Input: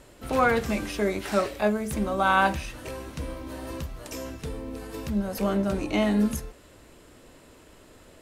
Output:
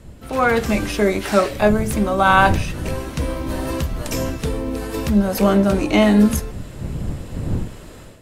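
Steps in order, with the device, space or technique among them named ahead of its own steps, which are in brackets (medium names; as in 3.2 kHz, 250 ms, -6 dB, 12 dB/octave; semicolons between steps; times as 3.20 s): smartphone video outdoors (wind noise 140 Hz -38 dBFS; level rider gain up to 11.5 dB; AAC 96 kbps 44.1 kHz)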